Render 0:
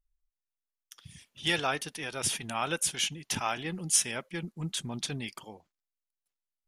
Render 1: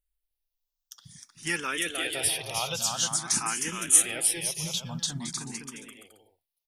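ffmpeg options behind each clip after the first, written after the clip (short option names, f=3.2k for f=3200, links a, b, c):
-filter_complex "[0:a]highshelf=f=3.8k:g=9.5,aecho=1:1:310|511.5|642.5|727.6|782.9:0.631|0.398|0.251|0.158|0.1,asplit=2[a][b];[b]afreqshift=0.49[c];[a][c]amix=inputs=2:normalize=1"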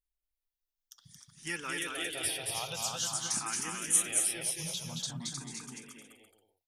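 -af "aecho=1:1:225:0.668,volume=-7.5dB"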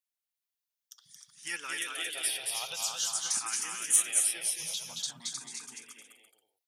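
-filter_complex "[0:a]highpass=f=1k:p=1,acrossover=split=2300[a][b];[a]tremolo=f=11:d=0.4[c];[b]volume=16.5dB,asoftclip=hard,volume=-16.5dB[d];[c][d]amix=inputs=2:normalize=0,volume=2.5dB"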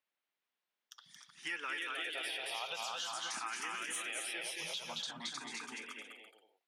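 -filter_complex "[0:a]acrossover=split=190 3400:gain=0.0708 1 0.1[a][b][c];[a][b][c]amix=inputs=3:normalize=0,asplit=2[d][e];[e]alimiter=level_in=11dB:limit=-24dB:level=0:latency=1:release=19,volume=-11dB,volume=1.5dB[f];[d][f]amix=inputs=2:normalize=0,acompressor=threshold=-41dB:ratio=3,volume=2dB"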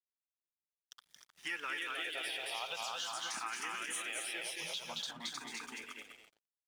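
-af "aeval=exprs='sgn(val(0))*max(abs(val(0))-0.00112,0)':c=same,volume=1dB"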